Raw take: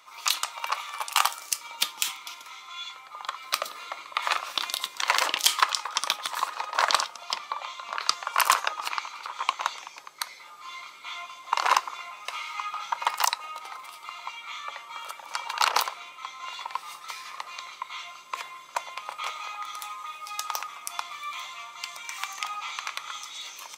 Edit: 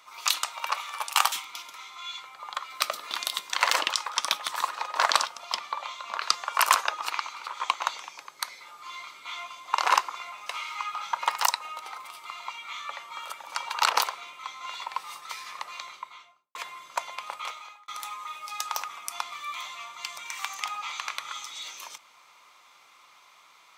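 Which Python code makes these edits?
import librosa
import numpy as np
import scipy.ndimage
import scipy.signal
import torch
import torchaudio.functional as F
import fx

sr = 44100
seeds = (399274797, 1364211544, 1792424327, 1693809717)

y = fx.studio_fade_out(x, sr, start_s=17.55, length_s=0.79)
y = fx.edit(y, sr, fx.cut(start_s=1.32, length_s=0.72),
    fx.cut(start_s=3.83, length_s=0.75),
    fx.cut(start_s=5.37, length_s=0.32),
    fx.fade_out_span(start_s=19.1, length_s=0.57), tone=tone)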